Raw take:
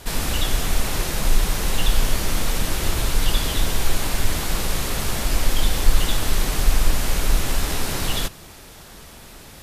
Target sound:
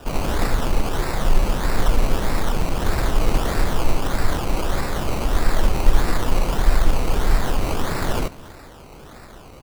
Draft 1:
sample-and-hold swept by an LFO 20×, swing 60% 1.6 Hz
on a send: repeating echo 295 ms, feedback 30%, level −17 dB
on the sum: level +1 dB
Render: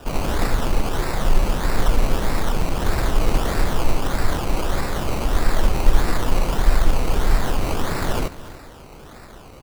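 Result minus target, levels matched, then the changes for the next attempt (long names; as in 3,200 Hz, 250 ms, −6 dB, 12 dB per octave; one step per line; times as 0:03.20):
echo-to-direct +7 dB
change: repeating echo 295 ms, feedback 30%, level −24 dB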